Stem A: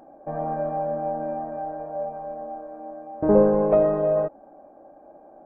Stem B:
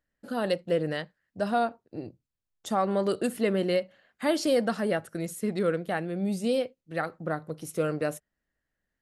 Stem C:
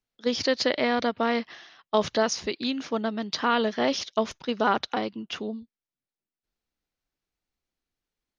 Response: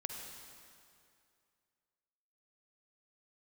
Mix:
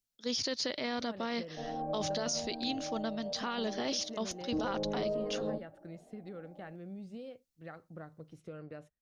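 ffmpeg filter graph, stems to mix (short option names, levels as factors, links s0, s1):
-filter_complex "[0:a]equalizer=f=1800:t=o:w=2.1:g=-14,asplit=2[s0][s1];[s1]adelay=2.9,afreqshift=1.1[s2];[s0][s2]amix=inputs=2:normalize=1,adelay=1300,volume=0.708[s3];[1:a]lowpass=4100,lowshelf=f=130:g=11,acompressor=threshold=0.0447:ratio=6,adelay=700,volume=0.178[s4];[2:a]bass=f=250:g=4,treble=f=4000:g=15,volume=0.335[s5];[s3][s4]amix=inputs=2:normalize=0,alimiter=level_in=1.19:limit=0.0631:level=0:latency=1:release=361,volume=0.841,volume=1[s6];[s5][s6]amix=inputs=2:normalize=0,alimiter=level_in=1.12:limit=0.0631:level=0:latency=1:release=11,volume=0.891"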